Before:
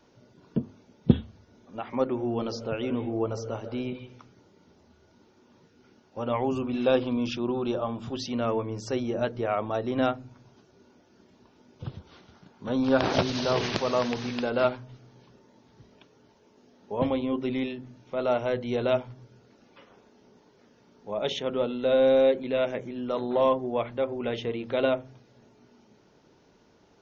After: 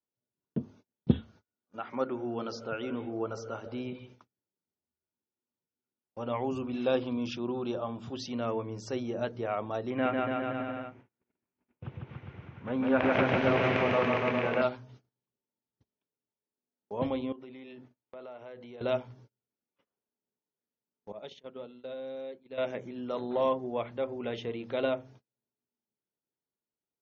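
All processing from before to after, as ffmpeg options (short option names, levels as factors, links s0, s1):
-filter_complex "[0:a]asettb=1/sr,asplit=3[s0][s1][s2];[s0]atrim=end=1.194[s3];[s1]atrim=start=1.19:end=3.66,asetpts=PTS-STARTPTS,afade=t=in:d=0.004:c=qsin,afade=t=out:st=2.466:d=0.004:c=qsin,highpass=f=150:p=1,equalizer=f=1400:t=o:w=0.29:g=9.5[s4];[s2]atrim=start=3.656[s5];[s3][s4]acrossfade=d=0.004:c1=hsin:c2=qsin[s6];[s6][s5]acrossfade=d=0.004:c1=qsin:c2=hsin,asettb=1/sr,asplit=3[s7][s8][s9];[s7]atrim=end=9.904[s10];[s8]atrim=start=9.9:end=14.62,asetpts=PTS-STARTPTS,afade=t=in:d=0.004:c=qsin,afade=t=out:st=4.716:d=0.004:c=qsin,highshelf=f=3300:t=q:w=3:g=-12.5,aecho=1:1:150|285|406.5|515.8|614.3|702.8|782.6:0.794|0.631|0.501|0.398|0.316|0.251|0.2,atrim=end_sample=208152[s11];[s9]atrim=start=14.616[s12];[s10][s11]acrossfade=d=0.004:c1=hsin:c2=qsin[s13];[s13][s12]acrossfade=d=0.004:c1=qsin:c2=hsin,asettb=1/sr,asplit=3[s14][s15][s16];[s14]atrim=end=17.324[s17];[s15]atrim=start=17.32:end=18.81,asetpts=PTS-STARTPTS,afade=t=in:d=0.004:c=qsin,afade=t=out:st=1.486:d=0.004:c=qsin,acompressor=threshold=0.0158:ratio=10:attack=3.2:release=140:knee=1:detection=peak,bass=f=250:g=-7,treble=f=4000:g=-8[s18];[s16]atrim=start=18.806[s19];[s17][s18]acrossfade=d=0.004:c1=hsin:c2=qsin[s20];[s20][s19]acrossfade=d=0.004:c1=qsin:c2=hsin,asettb=1/sr,asplit=3[s21][s22][s23];[s21]atrim=end=21.124[s24];[s22]atrim=start=21.12:end=22.58,asetpts=PTS-STARTPTS,afade=t=in:d=0.004:c=qsin,afade=t=out:st=1.456:d=0.004:c=qsin,agate=range=0.0224:threshold=0.0708:ratio=3:release=100:detection=peak,equalizer=f=4500:w=6.3:g=8,acompressor=threshold=0.0224:ratio=6:attack=3.2:release=140:knee=1:detection=peak[s25];[s23]atrim=start=22.576[s26];[s24][s25]acrossfade=d=0.004:c1=hsin:c2=qsin[s27];[s27][s26]acrossfade=d=0.004:c1=qsin:c2=hsin,highpass=49,agate=range=0.0224:threshold=0.00398:ratio=16:detection=peak,volume=0.562"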